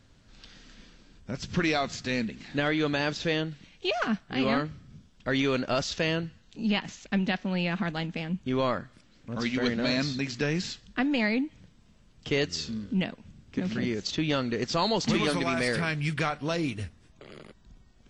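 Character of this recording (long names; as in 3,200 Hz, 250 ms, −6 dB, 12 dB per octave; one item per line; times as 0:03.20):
background noise floor −59 dBFS
spectral slope −4.0 dB per octave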